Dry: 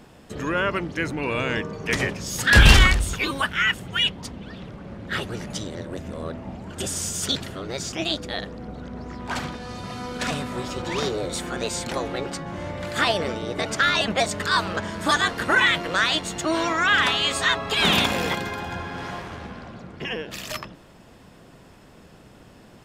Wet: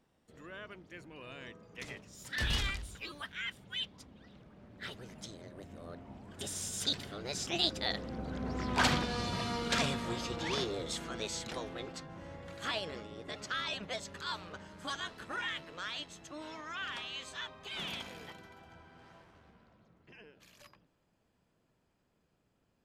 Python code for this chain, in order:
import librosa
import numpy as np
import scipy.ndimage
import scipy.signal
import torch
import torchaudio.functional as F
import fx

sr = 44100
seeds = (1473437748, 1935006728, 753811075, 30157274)

y = fx.doppler_pass(x, sr, speed_mps=20, closest_m=11.0, pass_at_s=8.88)
y = fx.dynamic_eq(y, sr, hz=4000.0, q=0.85, threshold_db=-54.0, ratio=4.0, max_db=5)